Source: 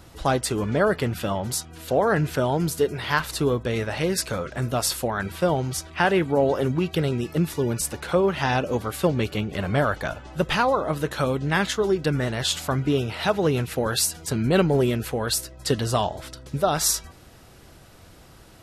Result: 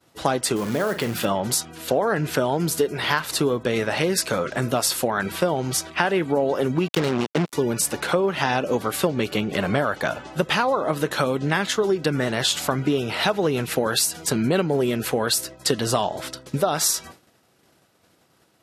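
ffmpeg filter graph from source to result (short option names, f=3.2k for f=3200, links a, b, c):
-filter_complex "[0:a]asettb=1/sr,asplit=3[a][b][c];[a]atrim=end=0.564[d];[b]atrim=start=0.56:end=1.25,asetpts=PTS-STARTPTS,afade=t=in:d=0.004:c=qsin,afade=t=out:st=0.686:d=0.004:c=qsin,acompressor=threshold=-28dB:ratio=2.5:attack=3.2:release=140:knee=1:detection=peak,acrusher=bits=4:mode=log:mix=0:aa=0.000001,asplit=2[e][f];[f]adelay=43,volume=-11dB[g];[e][g]amix=inputs=2:normalize=0,atrim=end_sample=30429[h];[c]atrim=start=1.246[i];[d][h]acrossfade=d=0.004:c1=hsin:c2=qsin[j];[j][i]acrossfade=d=0.004:c1=qsin:c2=hsin,asettb=1/sr,asplit=3[k][l][m];[k]atrim=end=6.884[n];[l]atrim=start=6.88:end=7.53,asetpts=PTS-STARTPTS,afade=t=in:d=0.004:c=qsin,afade=t=out:st=0.646:d=0.004:c=qsin,lowpass=f=6.7k:w=0.5412,lowpass=f=6.7k:w=1.3066,acrusher=bits=3:mix=0:aa=0.5[o];[m]atrim=start=7.526[p];[n][o]acrossfade=d=0.004:c1=hsin:c2=qsin[q];[q][p]acrossfade=d=0.004:c1=qsin:c2=hsin,agate=range=-33dB:threshold=-37dB:ratio=3:detection=peak,highpass=170,acompressor=threshold=-26dB:ratio=4,volume=7.5dB"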